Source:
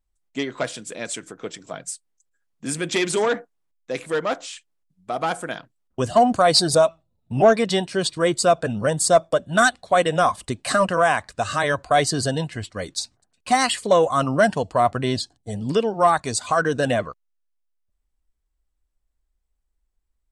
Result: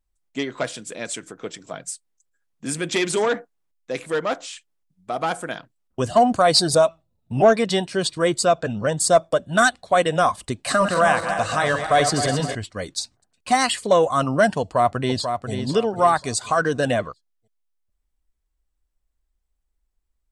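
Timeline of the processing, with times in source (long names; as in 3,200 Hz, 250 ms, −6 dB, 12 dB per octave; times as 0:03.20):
0:08.44–0:09.00: elliptic low-pass filter 7,700 Hz
0:10.55–0:12.55: feedback delay that plays each chunk backwards 132 ms, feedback 70%, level −7.5 dB
0:14.60–0:15.51: delay throw 490 ms, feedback 30%, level −7 dB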